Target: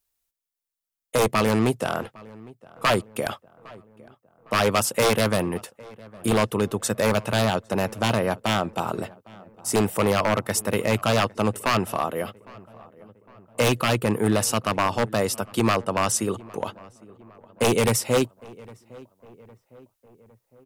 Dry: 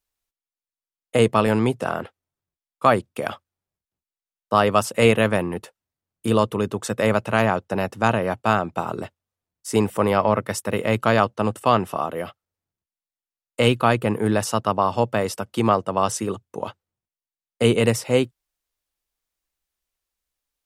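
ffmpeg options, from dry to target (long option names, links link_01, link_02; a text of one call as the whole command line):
ffmpeg -i in.wav -filter_complex "[0:a]highshelf=frequency=7400:gain=9.5,aeval=exprs='0.237*(abs(mod(val(0)/0.237+3,4)-2)-1)':channel_layout=same,asplit=2[link_01][link_02];[link_02]adelay=808,lowpass=frequency=1800:poles=1,volume=-22dB,asplit=2[link_03][link_04];[link_04]adelay=808,lowpass=frequency=1800:poles=1,volume=0.54,asplit=2[link_05][link_06];[link_06]adelay=808,lowpass=frequency=1800:poles=1,volume=0.54,asplit=2[link_07][link_08];[link_08]adelay=808,lowpass=frequency=1800:poles=1,volume=0.54[link_09];[link_01][link_03][link_05][link_07][link_09]amix=inputs=5:normalize=0" out.wav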